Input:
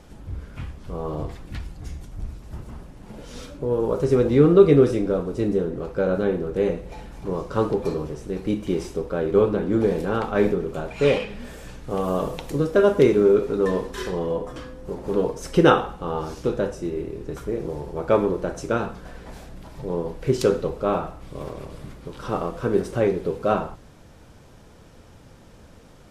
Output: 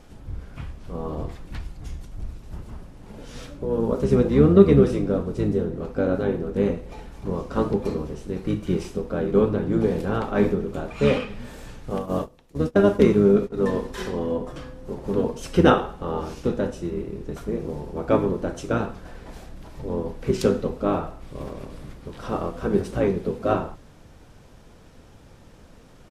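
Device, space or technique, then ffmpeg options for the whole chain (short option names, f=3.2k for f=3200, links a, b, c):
octave pedal: -filter_complex "[0:a]asplit=2[a][b];[b]asetrate=22050,aresample=44100,atempo=2,volume=-4dB[c];[a][c]amix=inputs=2:normalize=0,asplit=3[d][e][f];[d]afade=t=out:st=11.98:d=0.02[g];[e]agate=range=-22dB:threshold=-21dB:ratio=16:detection=peak,afade=t=in:st=11.98:d=0.02,afade=t=out:st=13.56:d=0.02[h];[f]afade=t=in:st=13.56:d=0.02[i];[g][h][i]amix=inputs=3:normalize=0,volume=-2dB"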